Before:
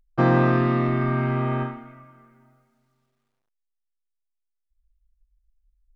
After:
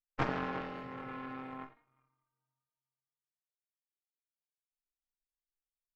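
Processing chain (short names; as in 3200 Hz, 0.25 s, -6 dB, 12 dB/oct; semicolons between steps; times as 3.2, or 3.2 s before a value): metallic resonator 140 Hz, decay 0.61 s, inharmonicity 0.03; de-hum 58.29 Hz, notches 32; added harmonics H 3 -9 dB, 4 -11 dB, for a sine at -25.5 dBFS; gain +7 dB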